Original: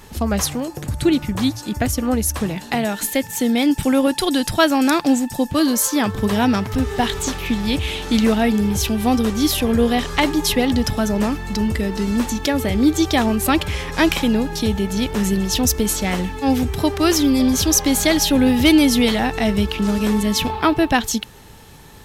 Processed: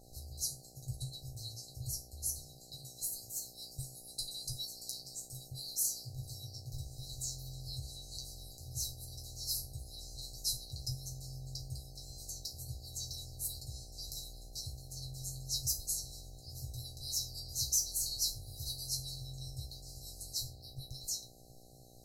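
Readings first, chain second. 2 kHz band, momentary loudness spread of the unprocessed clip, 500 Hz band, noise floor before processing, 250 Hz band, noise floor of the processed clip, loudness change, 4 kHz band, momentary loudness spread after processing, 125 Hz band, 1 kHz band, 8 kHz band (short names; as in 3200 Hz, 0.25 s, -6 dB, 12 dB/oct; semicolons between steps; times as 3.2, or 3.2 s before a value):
under -40 dB, 7 LU, -39.0 dB, -38 dBFS, under -40 dB, -56 dBFS, -21.0 dB, -17.0 dB, 13 LU, -18.5 dB, under -40 dB, -13.0 dB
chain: resonator bank C3 fifth, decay 0.28 s; FFT band-reject 150–3900 Hz; buzz 60 Hz, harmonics 13, -62 dBFS -1 dB/oct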